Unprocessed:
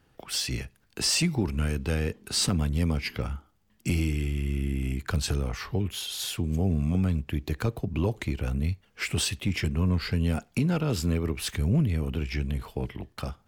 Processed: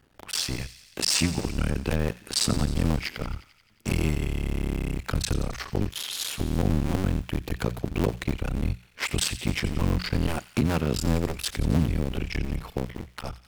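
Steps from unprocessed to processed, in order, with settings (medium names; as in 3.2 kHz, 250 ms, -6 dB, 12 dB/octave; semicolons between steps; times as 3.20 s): cycle switcher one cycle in 2, muted; hum notches 60/120/180 Hz; feedback echo behind a high-pass 88 ms, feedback 68%, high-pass 1.9 kHz, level -14 dB; trim +4 dB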